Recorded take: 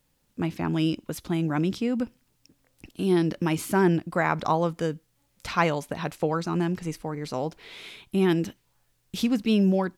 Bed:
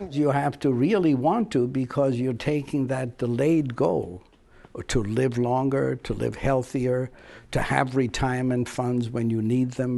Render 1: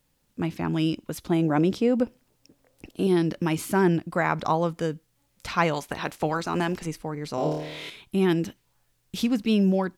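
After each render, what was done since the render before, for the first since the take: 1.29–3.07 s: peaking EQ 530 Hz +8.5 dB 1.5 oct; 5.73–6.85 s: spectral peaks clipped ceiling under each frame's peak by 13 dB; 7.35–7.90 s: flutter echo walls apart 4.5 m, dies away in 0.87 s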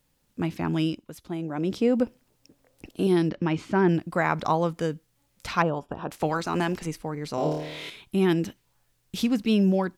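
0.80–1.82 s: dip -9 dB, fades 0.25 s; 3.29–3.89 s: distance through air 160 m; 5.62–6.11 s: boxcar filter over 21 samples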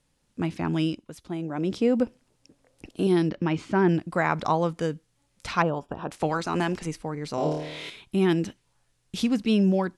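steep low-pass 11 kHz 48 dB/octave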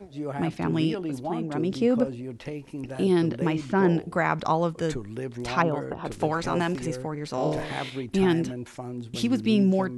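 add bed -10.5 dB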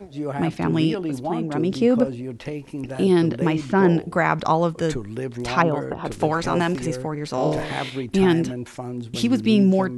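trim +4.5 dB

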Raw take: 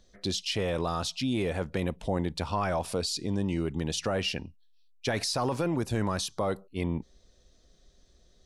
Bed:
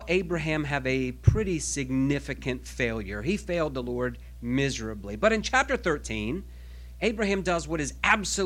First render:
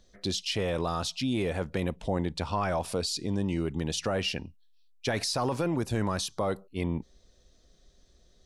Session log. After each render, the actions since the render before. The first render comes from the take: 1.95–2.68 s: low-pass 10 kHz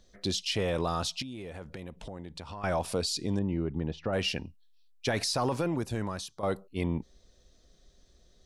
1.22–2.64 s: compression 5:1, threshold -39 dBFS; 3.39–4.13 s: tape spacing loss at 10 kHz 41 dB; 5.48–6.43 s: fade out, to -11 dB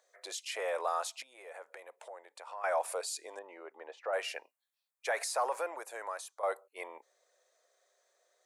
steep high-pass 520 Hz 36 dB/octave; high-order bell 4 kHz -11 dB 1.3 oct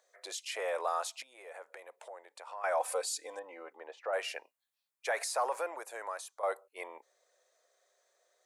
2.80–3.73 s: comb 3.9 ms, depth 78%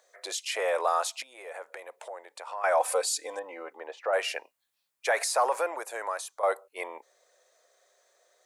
trim +7 dB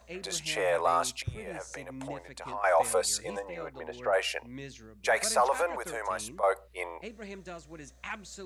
add bed -17 dB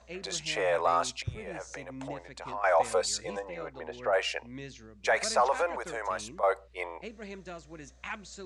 low-pass 7.6 kHz 24 dB/octave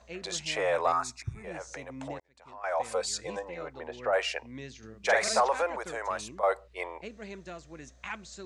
0.92–1.44 s: static phaser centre 1.3 kHz, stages 4; 2.20–3.31 s: fade in; 4.78–5.41 s: doubling 45 ms -2 dB

